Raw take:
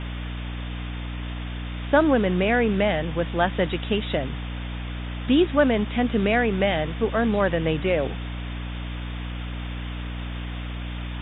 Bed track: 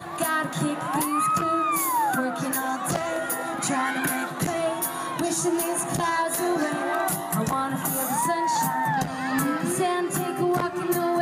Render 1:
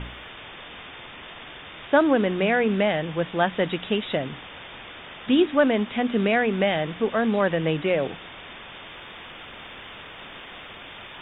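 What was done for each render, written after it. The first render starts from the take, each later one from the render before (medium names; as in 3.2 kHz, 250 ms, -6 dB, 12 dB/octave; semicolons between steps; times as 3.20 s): de-hum 60 Hz, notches 5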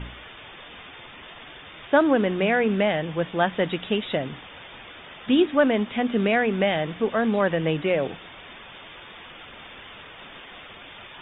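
noise reduction 6 dB, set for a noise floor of -42 dBFS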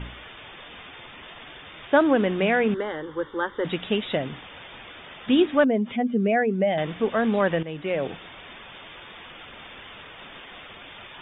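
2.74–3.65 s: static phaser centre 680 Hz, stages 6; 5.64–6.78 s: spectral contrast enhancement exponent 1.7; 7.63–8.14 s: fade in, from -14.5 dB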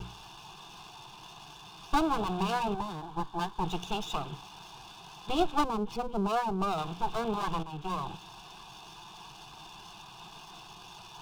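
comb filter that takes the minimum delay 1.1 ms; static phaser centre 380 Hz, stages 8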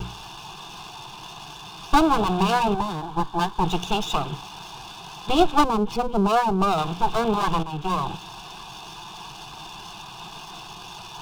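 trim +9.5 dB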